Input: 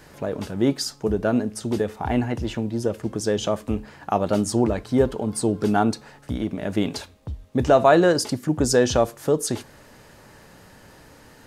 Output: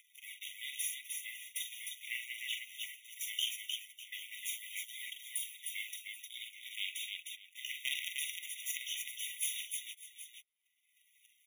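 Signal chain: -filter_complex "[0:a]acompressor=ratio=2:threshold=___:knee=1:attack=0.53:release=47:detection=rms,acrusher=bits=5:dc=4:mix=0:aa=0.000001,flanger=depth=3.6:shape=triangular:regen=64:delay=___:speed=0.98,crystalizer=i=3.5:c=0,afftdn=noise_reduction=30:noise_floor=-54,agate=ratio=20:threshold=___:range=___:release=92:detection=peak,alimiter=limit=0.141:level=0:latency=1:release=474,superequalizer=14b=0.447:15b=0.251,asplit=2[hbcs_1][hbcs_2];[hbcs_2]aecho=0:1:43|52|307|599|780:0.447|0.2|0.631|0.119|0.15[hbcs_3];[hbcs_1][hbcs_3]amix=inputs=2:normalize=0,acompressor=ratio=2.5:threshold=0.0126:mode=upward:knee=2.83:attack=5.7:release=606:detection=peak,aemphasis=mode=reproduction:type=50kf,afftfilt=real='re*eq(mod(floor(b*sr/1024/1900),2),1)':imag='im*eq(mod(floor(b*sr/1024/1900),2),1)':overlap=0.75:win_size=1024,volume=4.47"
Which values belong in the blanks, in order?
0.0126, 3.7, 0.00708, 0.00316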